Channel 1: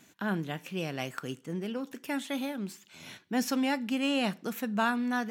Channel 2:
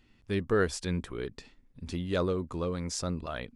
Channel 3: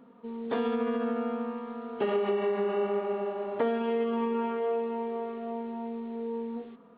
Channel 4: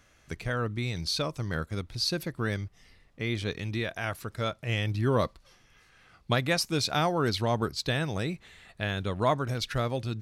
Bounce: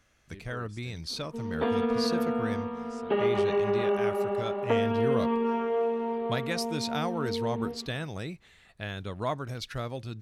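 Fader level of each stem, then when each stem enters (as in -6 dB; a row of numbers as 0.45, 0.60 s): off, -19.5 dB, +2.0 dB, -5.5 dB; off, 0.00 s, 1.10 s, 0.00 s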